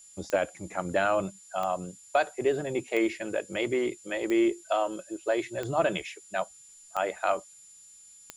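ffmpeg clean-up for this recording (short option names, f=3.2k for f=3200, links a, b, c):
-af "adeclick=t=4,bandreject=f=7.1k:w=30,afftdn=nr=20:nf=-53"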